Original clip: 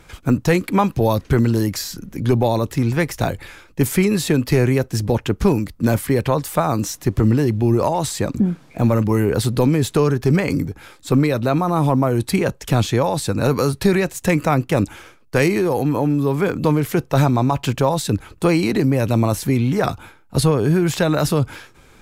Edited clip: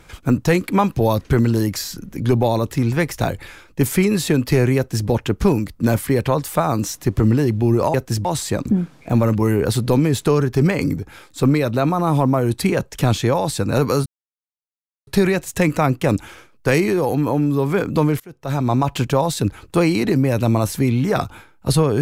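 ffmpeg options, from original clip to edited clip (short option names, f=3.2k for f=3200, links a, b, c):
-filter_complex "[0:a]asplit=5[a][b][c][d][e];[a]atrim=end=7.942[f];[b]atrim=start=4.768:end=5.082[g];[c]atrim=start=7.938:end=13.75,asetpts=PTS-STARTPTS,afade=t=out:st=5.808:d=0.004:c=hsin,apad=pad_dur=1.01[h];[d]atrim=start=13.75:end=16.88,asetpts=PTS-STARTPTS,afade=t=in:d=0.004:c=hsin,afade=t=out:st=3.126:d=0.004:c=hsin:silence=0.0749894[i];[e]atrim=start=16.88,asetpts=PTS-STARTPTS,afade=t=in:d=0.52:c=qua:silence=0.0749894[j];[f][g]acrossfade=d=0.004:c1=hsin:c2=hsin[k];[h][i][j]concat=n=3:v=0:a=1[l];[k][l]acrossfade=d=0.004:c1=hsin:c2=hsin"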